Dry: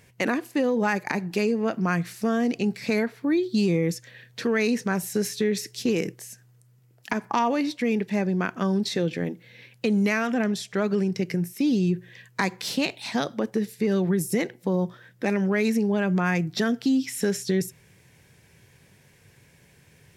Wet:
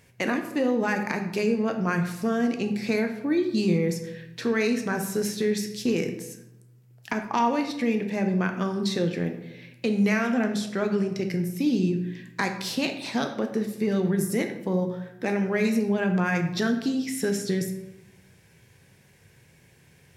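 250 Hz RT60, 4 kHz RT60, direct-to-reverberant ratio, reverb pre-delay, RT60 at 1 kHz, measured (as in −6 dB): 1.1 s, 0.55 s, 5.0 dB, 10 ms, 0.85 s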